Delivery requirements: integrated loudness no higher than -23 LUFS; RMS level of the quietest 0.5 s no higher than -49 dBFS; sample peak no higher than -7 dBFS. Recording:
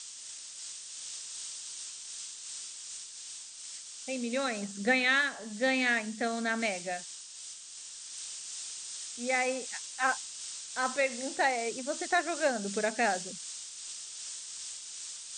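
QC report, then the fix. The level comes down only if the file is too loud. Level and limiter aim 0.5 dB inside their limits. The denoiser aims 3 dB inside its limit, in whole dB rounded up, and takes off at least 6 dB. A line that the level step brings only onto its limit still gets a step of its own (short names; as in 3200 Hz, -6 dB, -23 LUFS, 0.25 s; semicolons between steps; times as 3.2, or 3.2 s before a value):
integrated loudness -33.0 LUFS: OK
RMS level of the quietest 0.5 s -46 dBFS: fail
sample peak -14.0 dBFS: OK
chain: denoiser 6 dB, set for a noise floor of -46 dBFS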